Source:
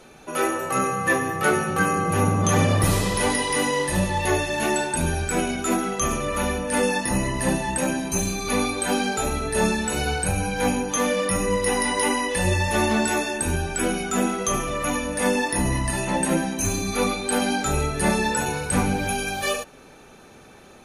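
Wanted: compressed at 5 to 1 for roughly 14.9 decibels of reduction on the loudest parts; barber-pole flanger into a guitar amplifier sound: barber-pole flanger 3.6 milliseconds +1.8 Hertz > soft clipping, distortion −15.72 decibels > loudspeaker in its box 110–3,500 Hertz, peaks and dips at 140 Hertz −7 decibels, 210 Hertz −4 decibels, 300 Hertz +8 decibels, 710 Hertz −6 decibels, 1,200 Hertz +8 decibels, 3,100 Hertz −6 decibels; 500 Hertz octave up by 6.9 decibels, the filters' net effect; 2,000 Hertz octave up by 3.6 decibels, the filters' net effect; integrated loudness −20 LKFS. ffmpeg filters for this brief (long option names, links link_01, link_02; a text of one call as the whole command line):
ffmpeg -i in.wav -filter_complex "[0:a]equalizer=frequency=500:width_type=o:gain=8,equalizer=frequency=2000:width_type=o:gain=3.5,acompressor=threshold=-30dB:ratio=5,asplit=2[link_01][link_02];[link_02]adelay=3.6,afreqshift=1.8[link_03];[link_01][link_03]amix=inputs=2:normalize=1,asoftclip=threshold=-30dB,highpass=110,equalizer=frequency=140:width_type=q:width=4:gain=-7,equalizer=frequency=210:width_type=q:width=4:gain=-4,equalizer=frequency=300:width_type=q:width=4:gain=8,equalizer=frequency=710:width_type=q:width=4:gain=-6,equalizer=frequency=1200:width_type=q:width=4:gain=8,equalizer=frequency=3100:width_type=q:width=4:gain=-6,lowpass=frequency=3500:width=0.5412,lowpass=frequency=3500:width=1.3066,volume=16.5dB" out.wav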